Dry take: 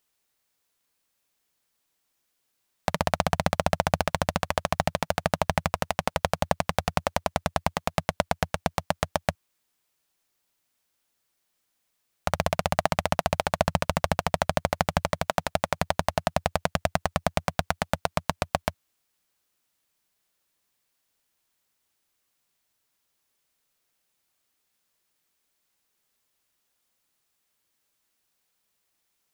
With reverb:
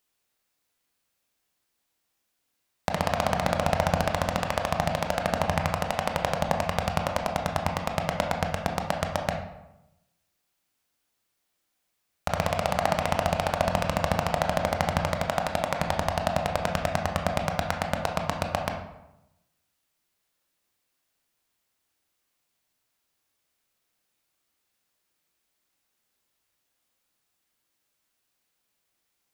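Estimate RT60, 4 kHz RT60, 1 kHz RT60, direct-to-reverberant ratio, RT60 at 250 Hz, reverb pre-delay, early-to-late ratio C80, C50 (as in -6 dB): 0.95 s, 0.55 s, 0.90 s, 2.5 dB, 1.0 s, 18 ms, 9.0 dB, 6.0 dB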